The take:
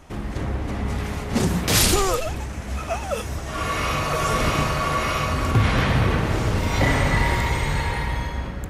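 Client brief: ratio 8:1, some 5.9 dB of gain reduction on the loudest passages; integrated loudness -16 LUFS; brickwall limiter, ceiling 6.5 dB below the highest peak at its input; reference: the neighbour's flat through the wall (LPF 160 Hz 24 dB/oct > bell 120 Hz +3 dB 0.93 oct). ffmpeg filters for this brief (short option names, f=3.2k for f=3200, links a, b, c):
-af "acompressor=threshold=-20dB:ratio=8,alimiter=limit=-17.5dB:level=0:latency=1,lowpass=f=160:w=0.5412,lowpass=f=160:w=1.3066,equalizer=f=120:t=o:w=0.93:g=3,volume=15dB"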